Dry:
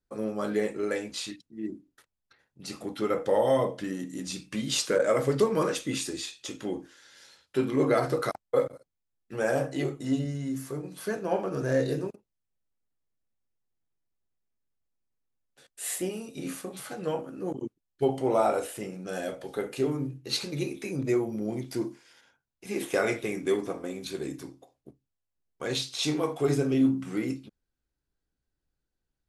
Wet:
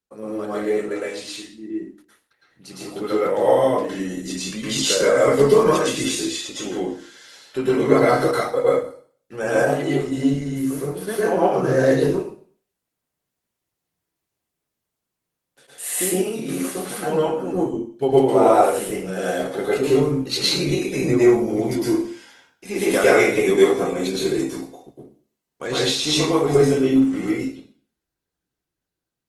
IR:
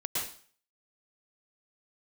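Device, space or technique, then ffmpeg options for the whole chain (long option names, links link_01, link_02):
far-field microphone of a smart speaker: -filter_complex "[1:a]atrim=start_sample=2205[link_01];[0:a][link_01]afir=irnorm=-1:irlink=0,highpass=frequency=140:poles=1,dynaudnorm=framelen=670:gausssize=11:maxgain=12dB" -ar 48000 -c:a libopus -b:a 24k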